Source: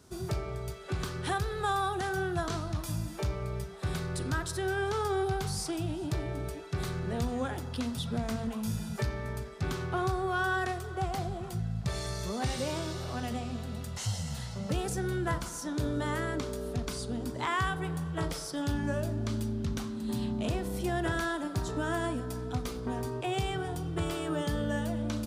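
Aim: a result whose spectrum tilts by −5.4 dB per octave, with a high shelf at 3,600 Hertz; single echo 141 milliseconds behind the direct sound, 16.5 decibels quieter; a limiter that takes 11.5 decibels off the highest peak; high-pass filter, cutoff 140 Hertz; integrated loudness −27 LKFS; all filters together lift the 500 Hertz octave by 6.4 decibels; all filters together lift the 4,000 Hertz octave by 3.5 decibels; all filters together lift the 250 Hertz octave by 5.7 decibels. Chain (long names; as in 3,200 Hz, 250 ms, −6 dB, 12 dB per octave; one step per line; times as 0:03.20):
high-pass filter 140 Hz
parametric band 250 Hz +6 dB
parametric band 500 Hz +6.5 dB
high-shelf EQ 3,600 Hz −3.5 dB
parametric band 4,000 Hz +6.5 dB
brickwall limiter −27.5 dBFS
single-tap delay 141 ms −16.5 dB
level +8.5 dB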